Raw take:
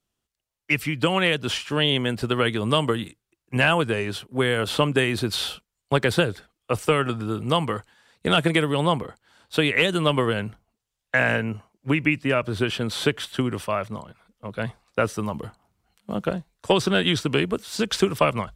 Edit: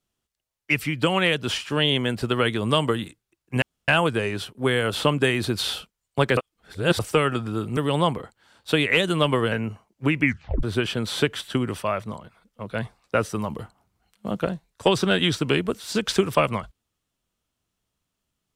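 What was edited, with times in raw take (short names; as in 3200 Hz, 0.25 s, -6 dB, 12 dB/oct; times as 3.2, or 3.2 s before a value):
3.62 insert room tone 0.26 s
6.11–6.73 reverse
7.51–8.62 cut
10.37–11.36 cut
12.07 tape stop 0.40 s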